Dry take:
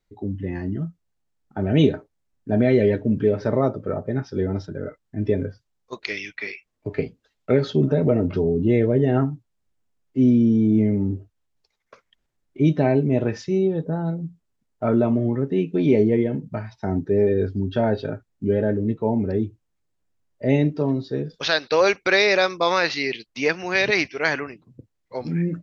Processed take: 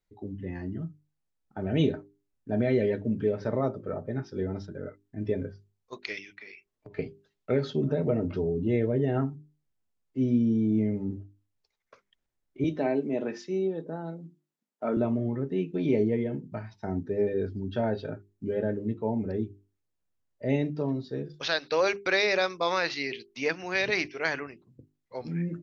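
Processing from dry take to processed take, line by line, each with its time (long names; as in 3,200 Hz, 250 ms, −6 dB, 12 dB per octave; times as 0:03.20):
0:06.18–0:06.99: downward compressor, threshold −35 dBFS
0:12.64–0:14.97: high-pass filter 200 Hz 24 dB per octave
whole clip: mains-hum notches 50/100/150/200/250/300/350/400 Hz; level −7 dB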